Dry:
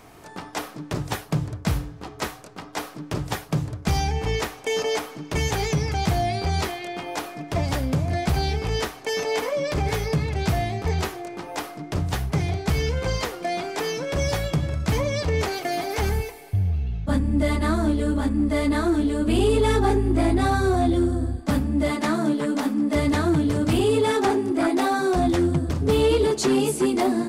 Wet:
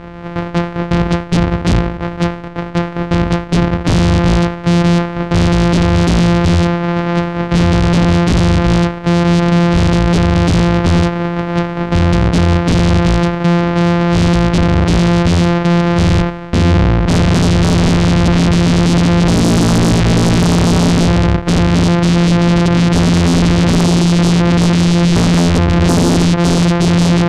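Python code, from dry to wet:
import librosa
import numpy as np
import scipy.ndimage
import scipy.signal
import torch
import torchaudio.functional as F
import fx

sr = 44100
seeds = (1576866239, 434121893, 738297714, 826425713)

y = np.r_[np.sort(x[:len(x) // 256 * 256].reshape(-1, 256), axis=1).ravel(), x[len(x) // 256 * 256:]]
y = scipy.signal.sosfilt(scipy.signal.butter(2, 2100.0, 'lowpass', fs=sr, output='sos'), y)
y = fx.fold_sine(y, sr, drive_db=12, ceiling_db=-9.5)
y = y * 10.0 ** (2.5 / 20.0)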